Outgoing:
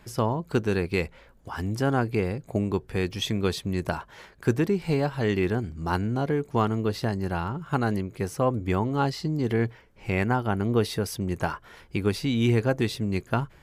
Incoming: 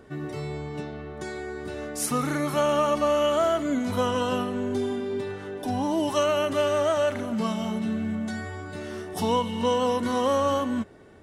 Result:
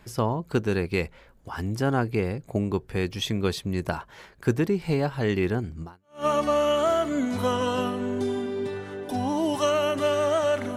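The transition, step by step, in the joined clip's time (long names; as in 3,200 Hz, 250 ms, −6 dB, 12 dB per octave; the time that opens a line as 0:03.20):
outgoing
0:06.04: continue with incoming from 0:02.58, crossfade 0.44 s exponential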